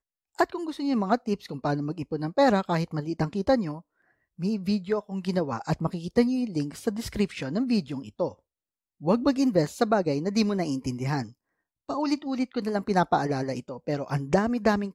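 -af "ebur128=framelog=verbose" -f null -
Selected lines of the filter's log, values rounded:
Integrated loudness:
  I:         -27.3 LUFS
  Threshold: -37.6 LUFS
Loudness range:
  LRA:         2.3 LU
  Threshold: -47.8 LUFS
  LRA low:   -28.9 LUFS
  LRA high:  -26.7 LUFS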